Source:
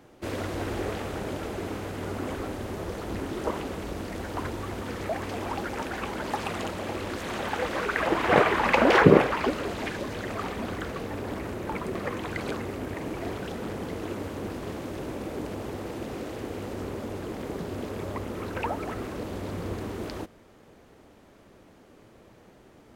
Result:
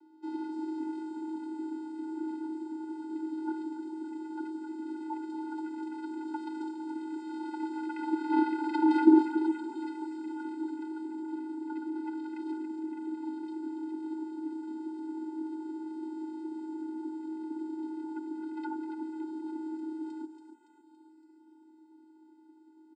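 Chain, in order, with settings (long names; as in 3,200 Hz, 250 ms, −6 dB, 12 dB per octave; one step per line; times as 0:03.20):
channel vocoder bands 8, square 282 Hz
frequency shifter +35 Hz
comb filter 3.3 ms, depth 67%
feedback echo with a high-pass in the loop 282 ms, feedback 59%, high-pass 460 Hz, level −6.5 dB
level −7.5 dB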